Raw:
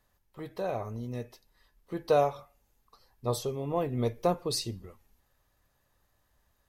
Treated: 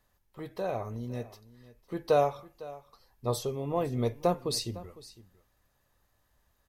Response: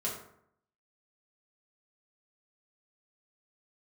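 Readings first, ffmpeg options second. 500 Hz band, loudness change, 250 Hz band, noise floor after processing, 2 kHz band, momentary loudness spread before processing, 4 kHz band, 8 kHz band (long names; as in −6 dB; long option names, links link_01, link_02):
0.0 dB, 0.0 dB, 0.0 dB, −73 dBFS, 0.0 dB, 17 LU, 0.0 dB, 0.0 dB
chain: -af "aecho=1:1:505:0.119"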